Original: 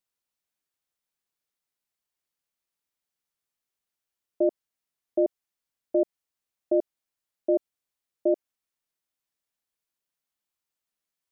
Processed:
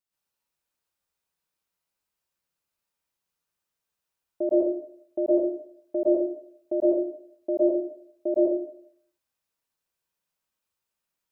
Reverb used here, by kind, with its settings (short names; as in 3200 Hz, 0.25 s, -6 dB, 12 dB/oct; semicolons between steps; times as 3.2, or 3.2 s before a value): plate-style reverb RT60 0.64 s, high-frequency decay 0.55×, pre-delay 0.1 s, DRR -8 dB; gain -4.5 dB